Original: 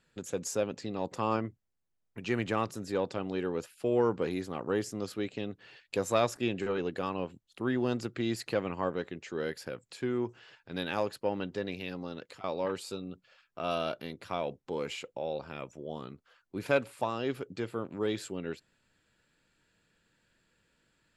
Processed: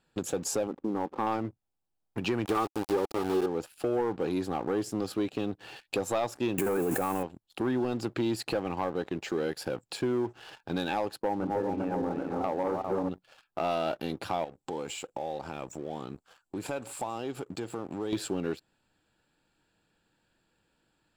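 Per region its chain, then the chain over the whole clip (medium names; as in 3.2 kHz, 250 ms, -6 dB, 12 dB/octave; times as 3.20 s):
0.67–1.27 s: brick-wall FIR band-pass 180–1400 Hz + hysteresis with a dead band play -56.5 dBFS + peaking EQ 680 Hz -7 dB 0.56 oct
2.45–3.46 s: small resonant body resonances 400/1200 Hz, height 13 dB, ringing for 35 ms + small samples zeroed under -32.5 dBFS + loudspeaker Doppler distortion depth 0.16 ms
6.58–7.23 s: zero-crossing glitches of -33.5 dBFS + high-order bell 4 kHz -14 dB 1.1 oct + level flattener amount 100%
11.22–13.09 s: backward echo that repeats 201 ms, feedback 60%, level -5 dB + low-pass 1.5 kHz 24 dB/octave
14.44–18.13 s: peaking EQ 7.6 kHz +13.5 dB 0.4 oct + compression 3:1, threshold -47 dBFS
whole clip: graphic EQ with 31 bands 315 Hz +5 dB, 800 Hz +10 dB, 2 kHz -7 dB, 6.3 kHz -5 dB; compression 3:1, threshold -37 dBFS; waveshaping leveller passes 2; trim +2.5 dB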